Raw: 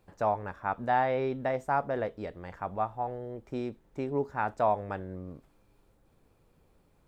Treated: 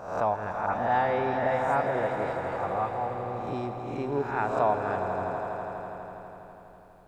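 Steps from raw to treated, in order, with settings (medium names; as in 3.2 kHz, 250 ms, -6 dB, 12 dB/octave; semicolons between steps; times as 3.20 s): reverse spectral sustain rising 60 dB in 0.71 s; 0.66–3.21 s: phase dispersion highs, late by 102 ms, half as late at 3 kHz; echo with a slow build-up 82 ms, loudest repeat 5, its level -12 dB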